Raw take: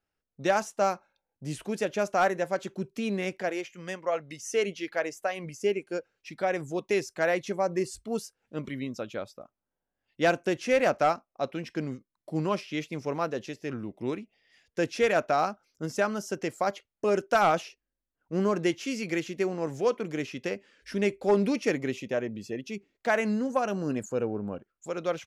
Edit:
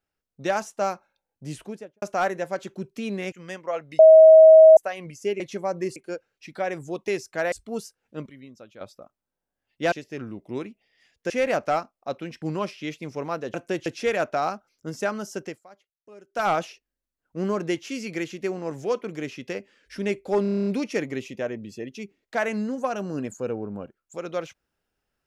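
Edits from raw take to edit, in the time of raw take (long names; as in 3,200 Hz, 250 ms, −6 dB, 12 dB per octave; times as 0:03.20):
0:01.51–0:02.02: fade out and dull
0:03.32–0:03.71: remove
0:04.38–0:05.16: beep over 637 Hz −6.5 dBFS
0:07.35–0:07.91: move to 0:05.79
0:08.65–0:09.20: clip gain −11 dB
0:10.31–0:10.63: swap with 0:13.44–0:14.82
0:11.75–0:12.32: remove
0:16.39–0:17.42: duck −22 dB, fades 0.17 s
0:21.38: stutter 0.03 s, 9 plays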